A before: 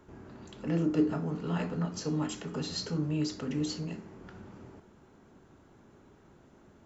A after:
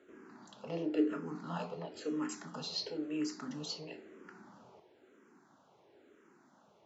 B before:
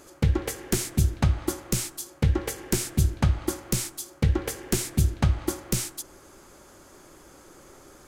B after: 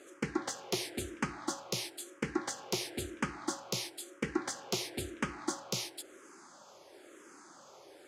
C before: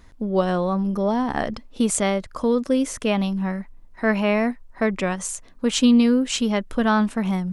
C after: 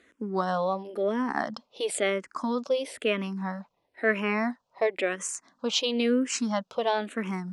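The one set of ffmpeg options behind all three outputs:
-filter_complex "[0:a]highpass=300,lowpass=7.7k,asplit=2[a][b];[b]afreqshift=-0.99[c];[a][c]amix=inputs=2:normalize=1"

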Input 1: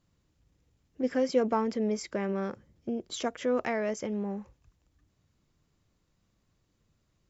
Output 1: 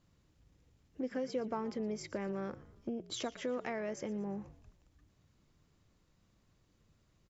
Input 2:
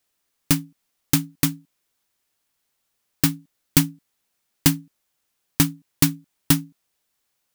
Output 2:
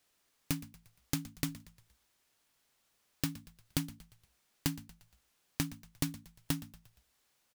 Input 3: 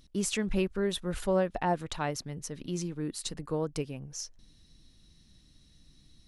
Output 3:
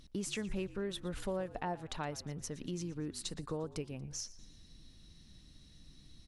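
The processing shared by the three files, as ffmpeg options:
-filter_complex "[0:a]highshelf=f=10k:g=-6.5,acompressor=threshold=-42dB:ratio=2.5,asplit=5[a][b][c][d][e];[b]adelay=117,afreqshift=-56,volume=-18dB[f];[c]adelay=234,afreqshift=-112,volume=-24.2dB[g];[d]adelay=351,afreqshift=-168,volume=-30.4dB[h];[e]adelay=468,afreqshift=-224,volume=-36.6dB[i];[a][f][g][h][i]amix=inputs=5:normalize=0,volume=2dB"

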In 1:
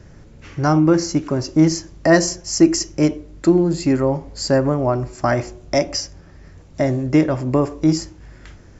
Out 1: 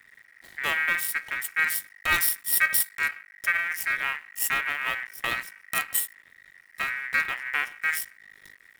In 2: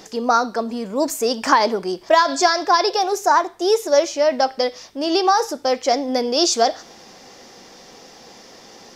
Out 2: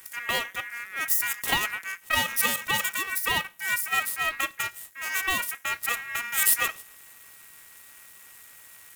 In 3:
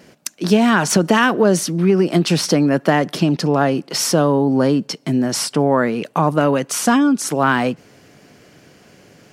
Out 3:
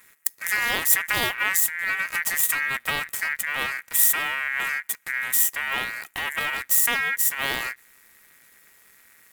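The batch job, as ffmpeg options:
-af "aeval=exprs='max(val(0),0)':c=same,aexciter=amount=14.2:drive=2.9:freq=8.5k,aeval=exprs='val(0)*sin(2*PI*1900*n/s)':c=same,volume=-5.5dB"

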